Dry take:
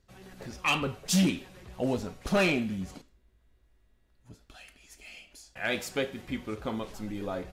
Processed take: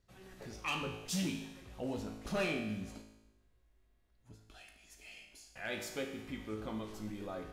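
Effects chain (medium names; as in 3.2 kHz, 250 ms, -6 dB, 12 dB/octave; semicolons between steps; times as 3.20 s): in parallel at +2 dB: peak limiter -30 dBFS, peak gain reduction 11 dB; on the sum: feedback comb 54 Hz, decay 0.95 s, harmonics all, mix 80%; trim -3 dB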